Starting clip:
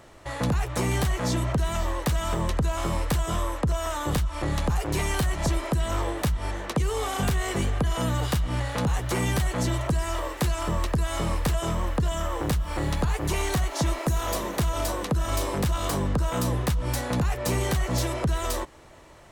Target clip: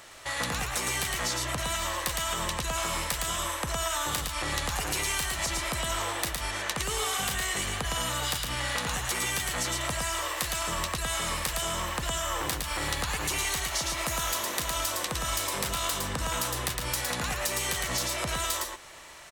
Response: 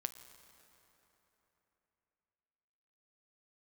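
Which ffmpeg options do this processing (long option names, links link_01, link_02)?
-filter_complex "[0:a]tiltshelf=frequency=890:gain=-9.5,acompressor=threshold=-28dB:ratio=6,asplit=2[link_01][link_02];[link_02]aecho=0:1:111:0.668[link_03];[link_01][link_03]amix=inputs=2:normalize=0"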